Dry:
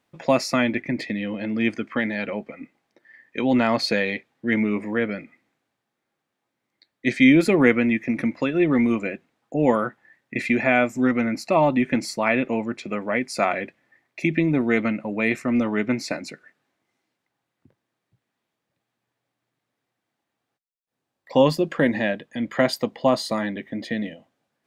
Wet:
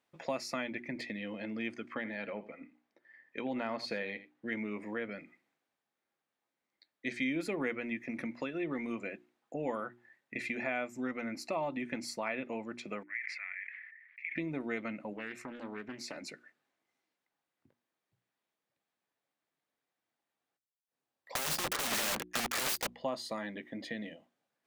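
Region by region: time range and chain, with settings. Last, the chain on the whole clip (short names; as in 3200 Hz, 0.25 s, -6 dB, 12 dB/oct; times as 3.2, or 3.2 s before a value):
1.94–4.46 high shelf 4100 Hz -8.5 dB + echo 83 ms -16.5 dB
13.03–14.36 Butterworth band-pass 2000 Hz, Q 3.6 + sustainer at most 41 dB/s
15.13–16.17 compressor 2.5:1, threshold -32 dBFS + Doppler distortion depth 0.32 ms
21.35–22.87 high shelf 7800 Hz -2 dB + sample leveller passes 5 + wrapped overs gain 11.5 dB
whole clip: low shelf 220 Hz -8.5 dB; notches 60/120/180/240/300/360 Hz; compressor 2:1, threshold -30 dBFS; gain -7.5 dB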